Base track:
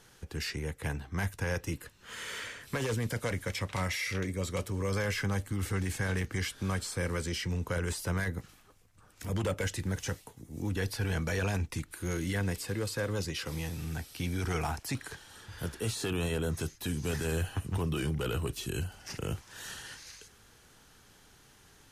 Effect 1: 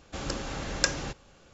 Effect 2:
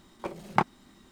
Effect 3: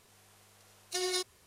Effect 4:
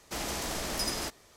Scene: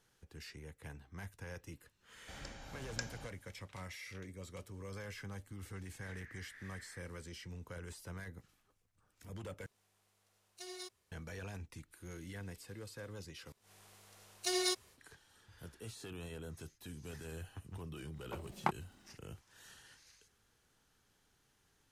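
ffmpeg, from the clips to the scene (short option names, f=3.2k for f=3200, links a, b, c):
-filter_complex "[3:a]asplit=2[a][b];[0:a]volume=-15dB[c];[1:a]aecho=1:1:1.3:0.43[d];[4:a]asuperpass=centerf=1800:order=4:qfactor=4.4[e];[b]dynaudnorm=f=100:g=3:m=16dB[f];[c]asplit=3[g][h][i];[g]atrim=end=9.664[j];[a]atrim=end=1.46,asetpts=PTS-STARTPTS,volume=-15dB[k];[h]atrim=start=11.116:end=13.524[l];[f]atrim=end=1.46,asetpts=PTS-STARTPTS,volume=-16dB[m];[i]atrim=start=14.976[n];[d]atrim=end=1.53,asetpts=PTS-STARTPTS,volume=-17dB,afade=t=in:d=0.004:c=hsin,afade=t=out:st=1.526:d=0.004:c=hsin,adelay=2150[o];[e]atrim=end=1.36,asetpts=PTS-STARTPTS,volume=-7.5dB,afade=t=in:d=0.004:c=hsin,afade=t=out:st=1.356:d=0.004:c=hsin,adelay=5910[p];[2:a]atrim=end=1.11,asetpts=PTS-STARTPTS,volume=-10dB,afade=t=in:d=0.1,afade=t=out:st=1.01:d=0.1,adelay=18080[q];[j][k]acrossfade=d=0.004:c1=hsin:c2=hsin[r];[r][l]acrossfade=d=0.004:c1=hsin:c2=hsin[s];[s][m]acrossfade=d=0.004:c1=hsin:c2=hsin[t];[t][n]acrossfade=d=0.004:c1=hsin:c2=hsin[u];[u][o][p][q]amix=inputs=4:normalize=0"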